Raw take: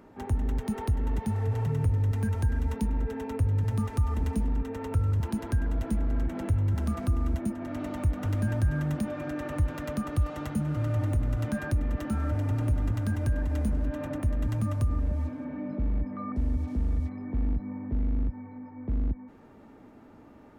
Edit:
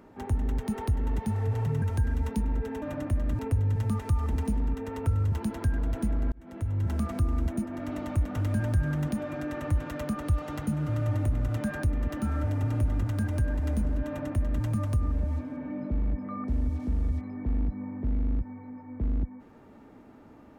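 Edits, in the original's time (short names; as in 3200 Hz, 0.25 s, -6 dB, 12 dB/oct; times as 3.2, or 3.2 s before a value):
1.82–2.27 cut
6.2–6.8 fade in
13.95–14.52 copy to 3.27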